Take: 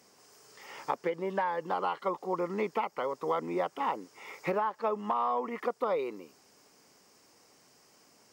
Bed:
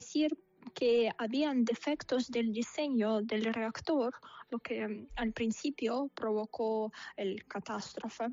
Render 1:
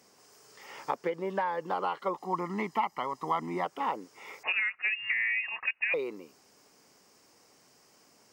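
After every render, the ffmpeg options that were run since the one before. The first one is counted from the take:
-filter_complex "[0:a]asettb=1/sr,asplit=3[s0][s1][s2];[s0]atrim=end=2.174[s3];[s1]atrim=start=2.17:end=3.65,asetpts=PTS-STARTPTS,afade=t=in:d=0.004:c=qsin,afade=t=out:st=1.476:d=0.004:c=qsin,aecho=1:1:1:0.69,atrim=end_sample=65268[s4];[s2]atrim=start=3.646[s5];[s3][s4]acrossfade=d=0.004:c1=hsin:c2=qsin[s6];[s6][s5]acrossfade=d=0.004:c1=qsin:c2=hsin,asettb=1/sr,asplit=3[s7][s8][s9];[s7]atrim=end=4.434[s10];[s8]atrim=start=4.43:end=5.94,asetpts=PTS-STARTPTS,afade=t=in:d=0.004:c=qsin,afade=t=out:st=1.506:d=0.004:c=qsin,lowpass=f=2600:t=q:w=0.5098,lowpass=f=2600:t=q:w=0.6013,lowpass=f=2600:t=q:w=0.9,lowpass=f=2600:t=q:w=2.563,afreqshift=-3000[s11];[s9]atrim=start=5.936[s12];[s10][s11]acrossfade=d=0.004:c1=hsin:c2=qsin[s13];[s13][s12]acrossfade=d=0.004:c1=qsin:c2=hsin"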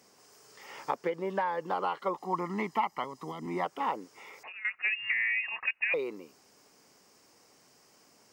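-filter_complex "[0:a]asettb=1/sr,asplit=3[s0][s1][s2];[s0]atrim=end=3.044[s3];[s1]atrim=start=3.04:end=3.46,asetpts=PTS-STARTPTS,afade=t=in:d=0.004:c=qsin,afade=t=out:st=0.416:d=0.004:c=qsin,acrossover=split=440|3000[s4][s5][s6];[s5]acompressor=threshold=0.00708:ratio=6:attack=3.2:release=140:knee=2.83:detection=peak[s7];[s4][s7][s6]amix=inputs=3:normalize=0[s8];[s2]atrim=start=3.456[s9];[s3][s8]acrossfade=d=0.004:c1=hsin:c2=qsin[s10];[s10][s9]acrossfade=d=0.004:c1=qsin:c2=hsin,asettb=1/sr,asplit=3[s11][s12][s13];[s11]atrim=end=4.134[s14];[s12]atrim=start=4.13:end=4.65,asetpts=PTS-STARTPTS,afade=t=in:d=0.004:c=qsin,afade=t=out:st=0.516:d=0.004:c=qsin,acompressor=threshold=0.00562:ratio=4:attack=3.2:release=140:knee=1:detection=peak[s15];[s13]atrim=start=4.646[s16];[s14][s15]acrossfade=d=0.004:c1=hsin:c2=qsin[s17];[s17][s16]acrossfade=d=0.004:c1=qsin:c2=hsin"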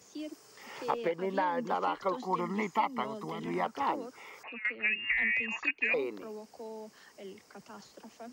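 -filter_complex "[1:a]volume=0.299[s0];[0:a][s0]amix=inputs=2:normalize=0"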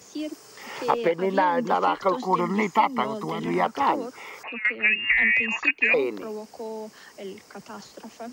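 -af "volume=2.82"

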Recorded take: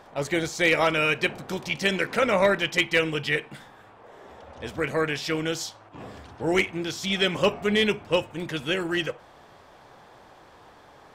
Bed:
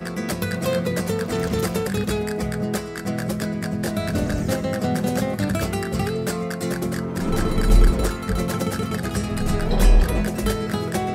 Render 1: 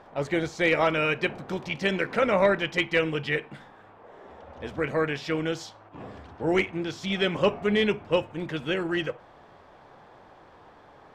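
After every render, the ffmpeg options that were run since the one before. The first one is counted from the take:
-af "aemphasis=mode=reproduction:type=75kf,bandreject=f=60:t=h:w=6,bandreject=f=120:t=h:w=6"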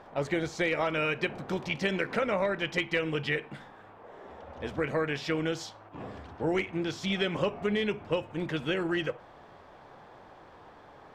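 -af "acompressor=threshold=0.0562:ratio=6"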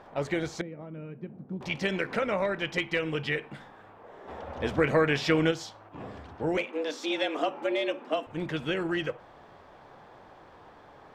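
-filter_complex "[0:a]asettb=1/sr,asplit=3[s0][s1][s2];[s0]atrim=end=0.614[s3];[s1]atrim=start=0.61:end=1.61,asetpts=PTS-STARTPTS,afade=t=in:d=0.004:c=qsin,afade=t=out:st=0.996:d=0.004:c=qsin,bandpass=f=190:t=q:w=2.1[s4];[s2]atrim=start=1.606[s5];[s3][s4]acrossfade=d=0.004:c1=hsin:c2=qsin[s6];[s6][s5]acrossfade=d=0.004:c1=qsin:c2=hsin,asplit=3[s7][s8][s9];[s7]afade=t=out:st=4.27:d=0.02[s10];[s8]acontrast=54,afade=t=in:st=4.27:d=0.02,afade=t=out:st=5.5:d=0.02[s11];[s9]afade=t=in:st=5.5:d=0.02[s12];[s10][s11][s12]amix=inputs=3:normalize=0,asettb=1/sr,asplit=3[s13][s14][s15];[s13]atrim=end=6.574[s16];[s14]atrim=start=6.57:end=8.27,asetpts=PTS-STARTPTS,afade=t=in:d=0.004:c=qsin,afade=t=out:st=1.696:d=0.004:c=qsin,afreqshift=150[s17];[s15]atrim=start=8.266[s18];[s16][s17]acrossfade=d=0.004:c1=hsin:c2=qsin[s19];[s19][s18]acrossfade=d=0.004:c1=qsin:c2=hsin"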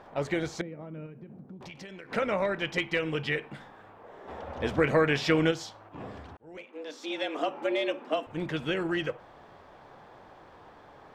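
-filter_complex "[0:a]asettb=1/sr,asplit=3[s0][s1][s2];[s0]atrim=end=1.064[s3];[s1]atrim=start=1.06:end=2.12,asetpts=PTS-STARTPTS,afade=t=in:d=0.004:c=qsin,afade=t=out:st=1.056:d=0.004:c=qsin,acompressor=threshold=0.00891:ratio=10:attack=3.2:release=140:knee=1:detection=peak[s4];[s2]atrim=start=2.116[s5];[s3][s4]acrossfade=d=0.004:c1=hsin:c2=qsin[s6];[s6][s5]acrossfade=d=0.004:c1=qsin:c2=hsin,asplit=2[s7][s8];[s7]atrim=end=6.37,asetpts=PTS-STARTPTS,afade=t=out:st=6.366:d=0.004:c=hsin[s9];[s8]atrim=start=6.37,asetpts=PTS-STARTPTS,afade=t=in:d=1.26[s10];[s9][s10]concat=n=2:v=0:a=1"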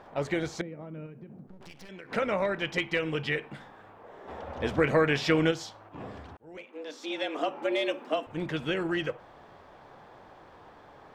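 -filter_complex "[0:a]asettb=1/sr,asplit=3[s0][s1][s2];[s0]atrim=end=1.474[s3];[s1]atrim=start=1.47:end=1.89,asetpts=PTS-STARTPTS,afade=t=in:d=0.004:c=qsin,afade=t=out:st=0.416:d=0.004:c=qsin,aeval=exprs='max(val(0),0)':c=same[s4];[s2]atrim=start=1.886[s5];[s3][s4]acrossfade=d=0.004:c1=hsin:c2=qsin[s6];[s6][s5]acrossfade=d=0.004:c1=qsin:c2=hsin,asettb=1/sr,asplit=3[s7][s8][s9];[s7]atrim=end=7.724[s10];[s8]atrim=start=7.72:end=8.12,asetpts=PTS-STARTPTS,afade=t=in:d=0.004:c=qsin,afade=t=out:st=0.396:d=0.004:c=qsin,highshelf=f=5500:g=7[s11];[s9]atrim=start=8.116[s12];[s10][s11]acrossfade=d=0.004:c1=hsin:c2=qsin[s13];[s13][s12]acrossfade=d=0.004:c1=qsin:c2=hsin"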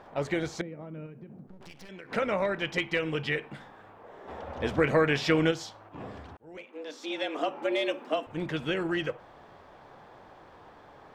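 -af anull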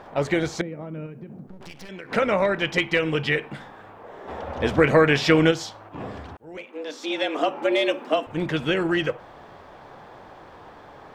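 -af "volume=2.24"

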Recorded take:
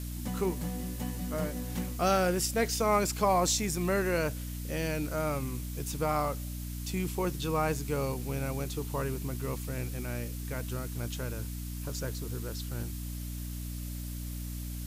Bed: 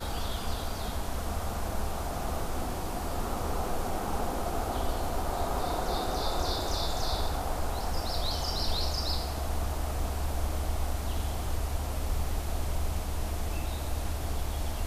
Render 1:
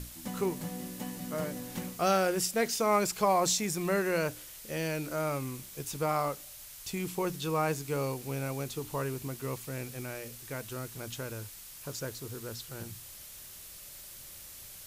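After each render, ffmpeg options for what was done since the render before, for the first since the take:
-af "bandreject=f=60:t=h:w=6,bandreject=f=120:t=h:w=6,bandreject=f=180:t=h:w=6,bandreject=f=240:t=h:w=6,bandreject=f=300:t=h:w=6"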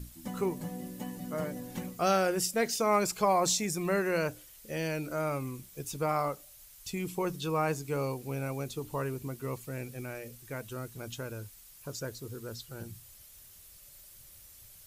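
-af "afftdn=nr=9:nf=-48"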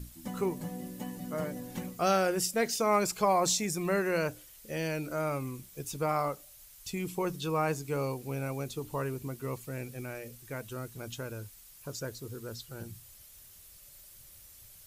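-af anull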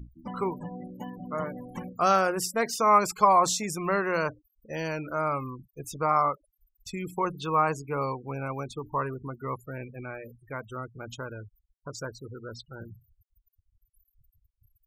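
-af "afftfilt=real='re*gte(hypot(re,im),0.00794)':imag='im*gte(hypot(re,im),0.00794)':win_size=1024:overlap=0.75,equalizer=f=1100:t=o:w=0.82:g=11.5"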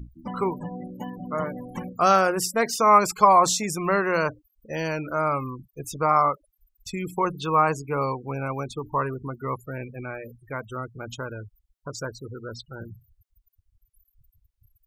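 -af "volume=1.58"

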